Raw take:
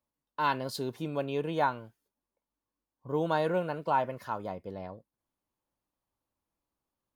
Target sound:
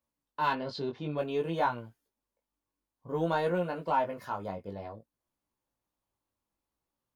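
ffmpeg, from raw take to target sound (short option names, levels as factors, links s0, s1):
-filter_complex "[0:a]asettb=1/sr,asplit=3[s0][s1][s2];[s0]atrim=end=0.534[s3];[s1]atrim=start=0.53:end=1.18,asetpts=PTS-STARTPTS,afade=t=in:d=0.004:c=qsin,afade=t=out:st=0.646:d=0.004:c=qsin,lowpass=f=4700:w=0.5412,lowpass=f=4700:w=1.3066[s4];[s2]atrim=start=1.176[s5];[s3][s4]acrossfade=d=0.004:c1=hsin:c2=qsin[s6];[s6][s5]acrossfade=d=0.004:c1=qsin:c2=hsin,asplit=2[s7][s8];[s8]asoftclip=type=tanh:threshold=0.0631,volume=0.398[s9];[s7][s9]amix=inputs=2:normalize=0,flanger=delay=17:depth=3.5:speed=0.56"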